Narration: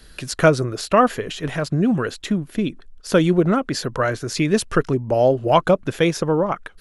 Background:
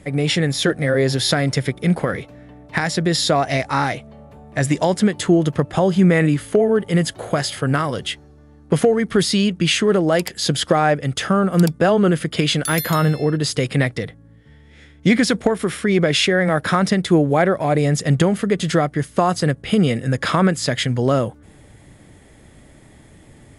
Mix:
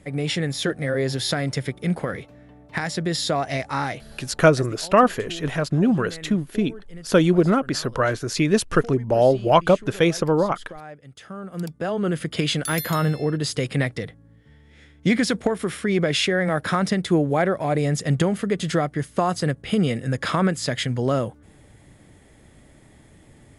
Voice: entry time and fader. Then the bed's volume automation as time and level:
4.00 s, -0.5 dB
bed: 4.26 s -6 dB
4.76 s -23.5 dB
11.06 s -23.5 dB
12.27 s -4.5 dB

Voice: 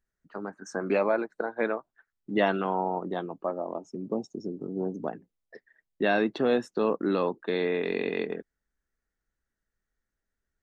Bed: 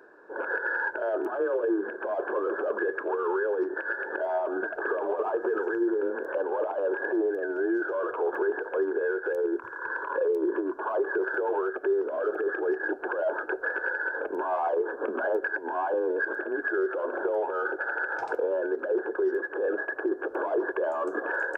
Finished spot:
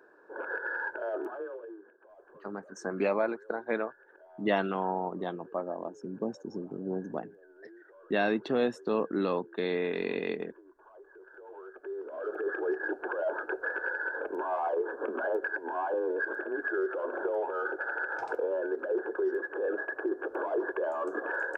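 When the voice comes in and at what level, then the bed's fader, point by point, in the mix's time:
2.10 s, -3.0 dB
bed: 1.23 s -5.5 dB
1.96 s -26.5 dB
11.15 s -26.5 dB
12.49 s -3.5 dB

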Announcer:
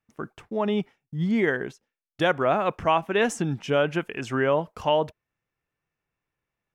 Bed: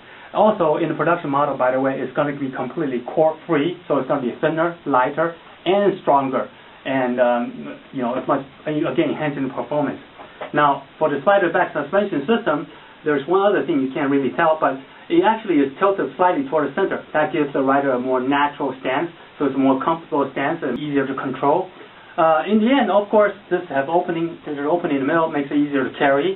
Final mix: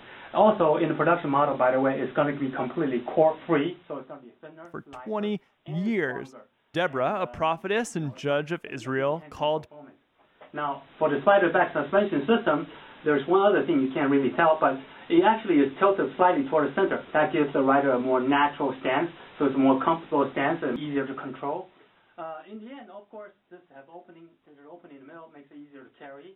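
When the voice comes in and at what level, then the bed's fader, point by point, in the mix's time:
4.55 s, -3.5 dB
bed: 3.53 s -4 dB
4.28 s -26.5 dB
10.08 s -26.5 dB
11.11 s -4 dB
20.58 s -4 dB
22.85 s -28 dB

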